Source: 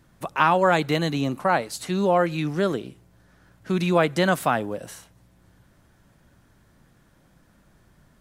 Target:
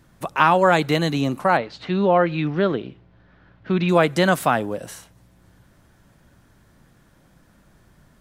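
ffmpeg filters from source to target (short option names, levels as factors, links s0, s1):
-filter_complex "[0:a]asettb=1/sr,asplit=3[s0][s1][s2];[s0]atrim=end=1.574[s3];[s1]atrim=start=1.57:end=3.89,asetpts=PTS-STARTPTS,afade=t=in:d=0.004:c=qsin,afade=t=out:st=2.316:d=0.004:c=qsin,lowpass=f=3800:w=0.5412,lowpass=f=3800:w=1.3066[s4];[s2]atrim=start=3.886[s5];[s3][s4]acrossfade=d=0.004:c1=hsin:c2=qsin[s6];[s6][s5]acrossfade=d=0.004:c1=qsin:c2=hsin,volume=1.41"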